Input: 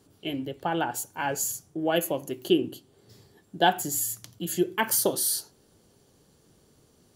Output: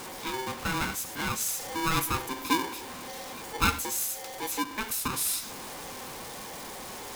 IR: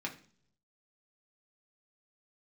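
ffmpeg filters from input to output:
-filter_complex "[0:a]aeval=exprs='val(0)+0.5*0.0299*sgn(val(0))':c=same,asettb=1/sr,asplit=3[s0][s1][s2];[s0]atrim=end=1.464[s3];[s1]atrim=start=1.46:end=2.22,asetpts=PTS-STARTPTS,afade=t=in:d=0.004:c=qsin,afade=t=out:st=0.756:d=0.004:c=qsin,aeval=exprs='0.299*(cos(1*acos(clip(val(0)/0.299,-1,1)))-cos(1*PI/2))+0.0188*(cos(5*acos(clip(val(0)/0.299,-1,1)))-cos(5*PI/2))':c=same[s4];[s2]atrim=start=2.216[s5];[s3][s4]acrossfade=d=0.004:c1=hsin:c2=qsin[s6];[s6][s5]acrossfade=d=0.004:c1=qsin:c2=hsin,asettb=1/sr,asplit=3[s7][s8][s9];[s7]atrim=end=4.514[s10];[s8]atrim=start=4.51:end=5.1,asetpts=PTS-STARTPTS,afade=t=in:d=0.004:c=qsin,afade=t=out:st=0.586:d=0.004:c=qsin,acompressor=threshold=0.0562:ratio=3[s11];[s9]atrim=start=5.096[s12];[s10][s11]acrossfade=d=0.004:c1=hsin:c2=qsin[s13];[s13][s12]acrossfade=d=0.004:c1=qsin:c2=hsin,flanger=delay=1.9:depth=6.5:regen=76:speed=0.77:shape=sinusoidal,aeval=exprs='val(0)*sgn(sin(2*PI*650*n/s))':c=same"

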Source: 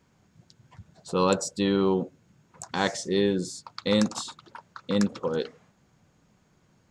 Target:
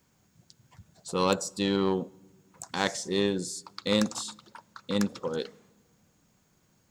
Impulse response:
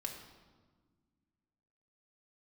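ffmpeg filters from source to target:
-filter_complex "[0:a]asplit=2[s0][s1];[1:a]atrim=start_sample=2205[s2];[s1][s2]afir=irnorm=-1:irlink=0,volume=0.126[s3];[s0][s3]amix=inputs=2:normalize=0,aeval=exprs='0.376*(cos(1*acos(clip(val(0)/0.376,-1,1)))-cos(1*PI/2))+0.0531*(cos(3*acos(clip(val(0)/0.376,-1,1)))-cos(3*PI/2))':c=same,acrossover=split=4100[s4][s5];[s5]acompressor=threshold=0.01:ratio=4:attack=1:release=60[s6];[s4][s6]amix=inputs=2:normalize=0,aemphasis=mode=production:type=50fm"

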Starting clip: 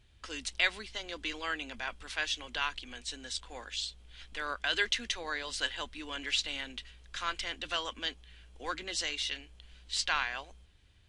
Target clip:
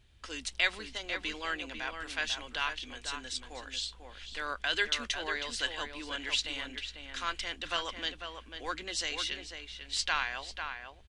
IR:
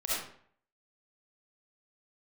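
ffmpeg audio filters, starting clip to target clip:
-filter_complex "[0:a]asplit=2[s0][s1];[s1]adelay=495.6,volume=0.501,highshelf=f=4000:g=-11.2[s2];[s0][s2]amix=inputs=2:normalize=0"

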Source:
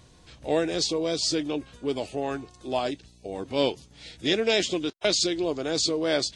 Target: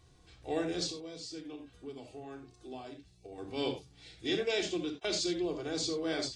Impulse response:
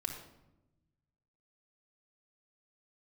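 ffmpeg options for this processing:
-filter_complex "[0:a]asettb=1/sr,asplit=3[s0][s1][s2];[s0]atrim=end=0.904[s3];[s1]atrim=start=0.9:end=3.38,asetpts=PTS-STARTPTS,afade=t=in:d=0.004:c=qsin,afade=t=out:st=2.476:d=0.004:c=qsin,acompressor=threshold=0.0126:ratio=2.5[s4];[s2]atrim=start=3.376[s5];[s3][s4]acrossfade=d=0.004:c1=hsin:c2=qsin[s6];[s6][s5]acrossfade=d=0.004:c1=qsin:c2=hsin[s7];[1:a]atrim=start_sample=2205,atrim=end_sample=4410[s8];[s7][s8]afir=irnorm=-1:irlink=0,volume=0.355"

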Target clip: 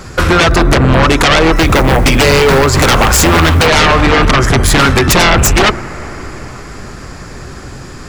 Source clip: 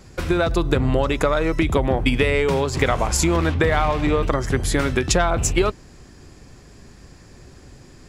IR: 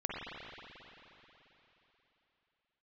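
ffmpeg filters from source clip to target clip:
-filter_complex "[0:a]equalizer=f=1300:t=o:w=0.68:g=8,bandreject=f=50:t=h:w=6,bandreject=f=100:t=h:w=6,bandreject=f=150:t=h:w=6,bandreject=f=200:t=h:w=6,bandreject=f=250:t=h:w=6,bandreject=f=300:t=h:w=6,bandreject=f=350:t=h:w=6,asettb=1/sr,asplit=3[s0][s1][s2];[s0]atrim=end=1.564[s3];[s1]atrim=start=1.56:end=3.67,asetpts=PTS-STARTPTS,afade=t=in:d=0.004:c=qsin,afade=t=out:st=2.106:d=0.004:c=qsin,acrusher=bits=6:mode=log:mix=0:aa=0.000001[s4];[s2]atrim=start=3.666[s5];[s3][s4]acrossfade=d=0.004:c1=hsin:c2=qsin[s6];[s6][s5]acrossfade=d=0.004:c1=qsin:c2=hsin,aeval=exprs='0.794*sin(PI/2*5.62*val(0)/0.794)':c=same,asplit=2[s7][s8];[1:a]atrim=start_sample=2205,asetrate=28224,aresample=44100[s9];[s8][s9]afir=irnorm=-1:irlink=0,volume=0.1[s10];[s7][s10]amix=inputs=2:normalize=0,volume=0.668"

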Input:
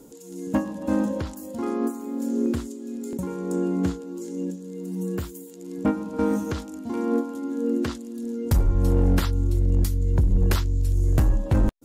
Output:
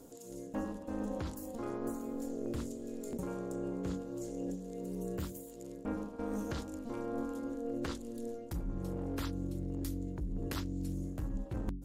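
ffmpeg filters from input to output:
-af "tremolo=f=230:d=0.75,bandreject=f=46.9:t=h:w=4,bandreject=f=93.8:t=h:w=4,bandreject=f=140.7:t=h:w=4,bandreject=f=187.6:t=h:w=4,bandreject=f=234.5:t=h:w=4,bandreject=f=281.4:t=h:w=4,bandreject=f=328.3:t=h:w=4,bandreject=f=375.2:t=h:w=4,areverse,acompressor=threshold=0.0282:ratio=10,areverse,volume=0.75"

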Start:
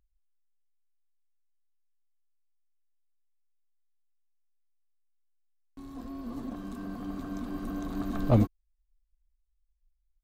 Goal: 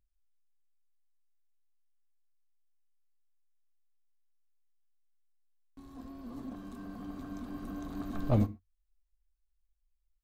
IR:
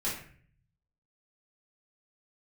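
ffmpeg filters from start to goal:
-filter_complex "[0:a]equalizer=f=93:t=o:w=0.27:g=6,asplit=2[s0][s1];[1:a]atrim=start_sample=2205,afade=t=out:st=0.18:d=0.01,atrim=end_sample=8379[s2];[s1][s2]afir=irnorm=-1:irlink=0,volume=0.126[s3];[s0][s3]amix=inputs=2:normalize=0,volume=0.501"

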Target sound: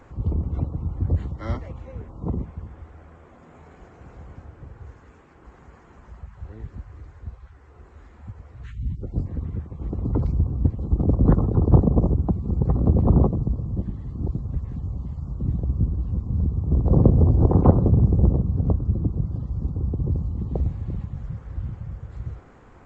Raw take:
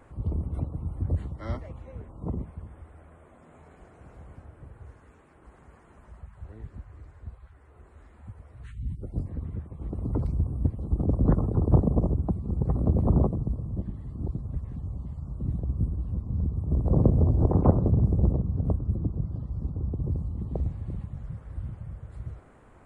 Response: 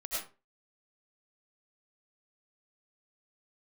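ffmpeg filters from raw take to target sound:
-af "bandreject=f=620:w=12,volume=1.78" -ar 16000 -c:a g722

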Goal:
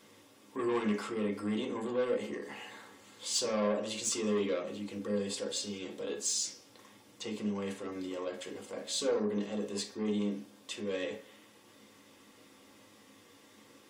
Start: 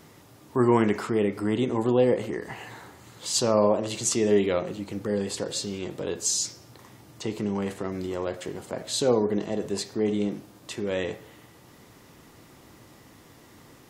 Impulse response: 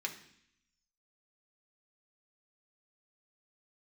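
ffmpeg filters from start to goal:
-filter_complex "[0:a]asoftclip=type=tanh:threshold=0.1[s0];[1:a]atrim=start_sample=2205,atrim=end_sample=4410,asetrate=61740,aresample=44100[s1];[s0][s1]afir=irnorm=-1:irlink=0,volume=0.75"

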